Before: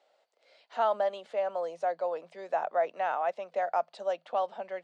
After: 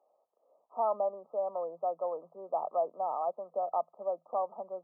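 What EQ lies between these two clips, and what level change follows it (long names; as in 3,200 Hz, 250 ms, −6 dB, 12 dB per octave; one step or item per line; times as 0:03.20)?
linear-phase brick-wall low-pass 1,300 Hz
−2.5 dB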